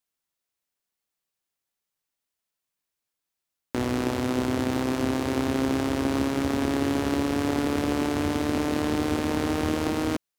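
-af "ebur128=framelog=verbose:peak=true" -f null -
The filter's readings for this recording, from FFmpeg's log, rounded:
Integrated loudness:
  I:         -26.2 LUFS
  Threshold: -36.2 LUFS
Loudness range:
  LRA:         7.4 LU
  Threshold: -47.1 LUFS
  LRA low:   -33.2 LUFS
  LRA high:  -25.8 LUFS
True peak:
  Peak:      -11.7 dBFS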